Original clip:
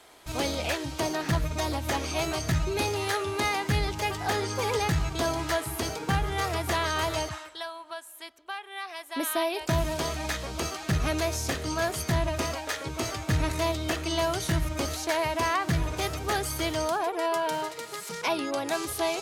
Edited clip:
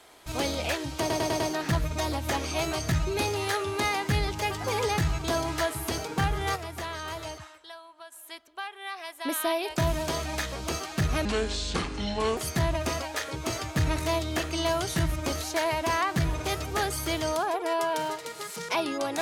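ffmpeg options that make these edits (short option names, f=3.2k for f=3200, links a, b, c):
-filter_complex "[0:a]asplit=10[a][b][c][d][e][f][g][h][i][j];[a]atrim=end=1.102[k];[b]atrim=start=0.998:end=1.102[l];[c]atrim=start=0.998:end=1.102[m];[d]atrim=start=0.998:end=1.102[n];[e]atrim=start=0.998:end=4.242[o];[f]atrim=start=4.548:end=6.472[p];[g]atrim=start=6.468:end=8.032,asetpts=PTS-STARTPTS,volume=-8dB[q];[h]atrim=start=8.028:end=11.164[r];[i]atrim=start=11.16:end=11.9,asetpts=PTS-STARTPTS,asetrate=29106,aresample=44100,atrim=end_sample=49445,asetpts=PTS-STARTPTS[s];[j]atrim=start=11.896[t];[k][l]acrossfade=d=0.004:c1=hsin:c2=hsin[u];[u][m]acrossfade=d=0.004:c1=hsin:c2=hsin[v];[v][n]acrossfade=d=0.004:c1=hsin:c2=hsin[w];[w][o]acrossfade=d=0.004:c1=hsin:c2=hsin[x];[x][p]acrossfade=d=0.004:c1=hsin:c2=hsin[y];[y][q]acrossfade=d=0.004:c1=hsin:c2=hsin[z];[z][r]acrossfade=d=0.004:c1=hsin:c2=hsin[aa];[aa][s]acrossfade=d=0.004:c1=hsin:c2=hsin[ab];[ab][t]acrossfade=d=0.004:c1=hsin:c2=hsin"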